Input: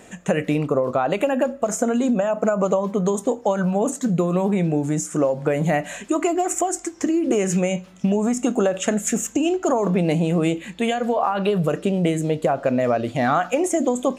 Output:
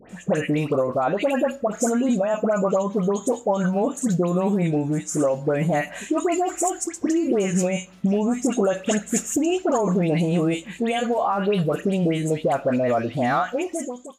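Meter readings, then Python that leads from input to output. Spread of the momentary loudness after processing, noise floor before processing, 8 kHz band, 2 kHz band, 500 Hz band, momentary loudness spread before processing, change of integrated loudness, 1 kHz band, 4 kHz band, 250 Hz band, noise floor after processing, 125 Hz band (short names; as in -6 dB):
4 LU, -43 dBFS, -1.0 dB, -1.0 dB, -1.0 dB, 3 LU, -1.0 dB, -1.0 dB, -1.0 dB, -1.0 dB, -43 dBFS, -1.0 dB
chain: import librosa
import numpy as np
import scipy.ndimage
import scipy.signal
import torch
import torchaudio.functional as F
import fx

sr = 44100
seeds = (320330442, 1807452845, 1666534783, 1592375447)

y = fx.fade_out_tail(x, sr, length_s=0.94)
y = fx.dispersion(y, sr, late='highs', ms=96.0, hz=1600.0)
y = y * 10.0 ** (-1.0 / 20.0)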